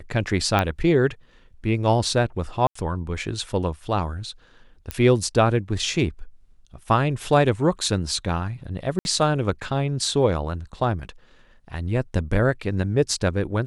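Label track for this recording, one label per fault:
0.590000	0.590000	pop -8 dBFS
2.670000	2.750000	dropout 84 ms
4.910000	4.910000	pop -11 dBFS
8.990000	9.050000	dropout 61 ms

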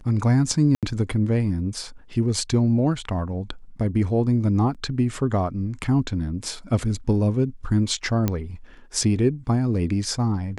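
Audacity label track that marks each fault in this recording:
0.750000	0.830000	dropout 77 ms
4.740000	4.750000	dropout 6.9 ms
8.280000	8.280000	pop -9 dBFS

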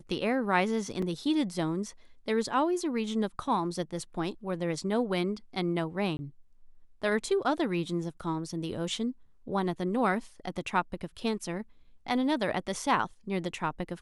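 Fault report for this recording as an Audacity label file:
1.020000	1.020000	dropout 4.1 ms
6.170000	6.190000	dropout 20 ms

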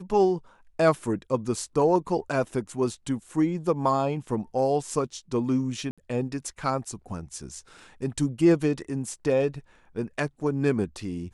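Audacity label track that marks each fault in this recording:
5.910000	5.980000	dropout 66 ms

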